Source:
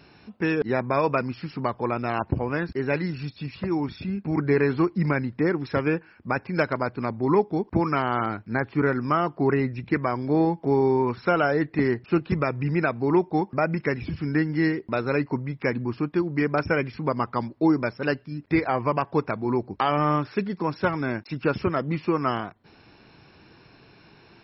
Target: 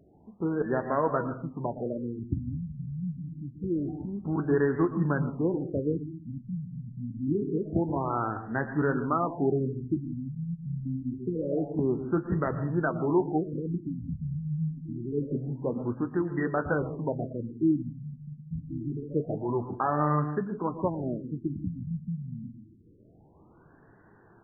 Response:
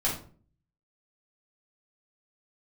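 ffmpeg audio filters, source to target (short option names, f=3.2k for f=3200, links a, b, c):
-filter_complex "[0:a]flanger=delay=9.7:depth=4.4:regen=-59:speed=0.87:shape=triangular,asplit=2[a][b];[1:a]atrim=start_sample=2205,adelay=108[c];[b][c]afir=irnorm=-1:irlink=0,volume=-19dB[d];[a][d]amix=inputs=2:normalize=0,afftfilt=real='re*lt(b*sr/1024,230*pow(2000/230,0.5+0.5*sin(2*PI*0.26*pts/sr)))':imag='im*lt(b*sr/1024,230*pow(2000/230,0.5+0.5*sin(2*PI*0.26*pts/sr)))':win_size=1024:overlap=0.75"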